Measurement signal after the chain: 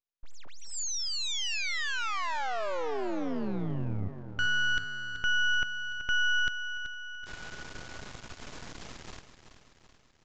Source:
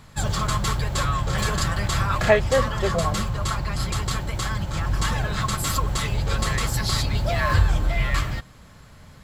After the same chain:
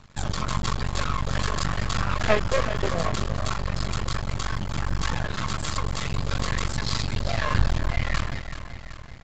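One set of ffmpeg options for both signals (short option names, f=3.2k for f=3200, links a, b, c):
-af "aecho=1:1:381|762|1143|1524|1905|2286:0.266|0.152|0.0864|0.0493|0.0281|0.016,aeval=exprs='max(val(0),0)':c=same,aresample=16000,aresample=44100"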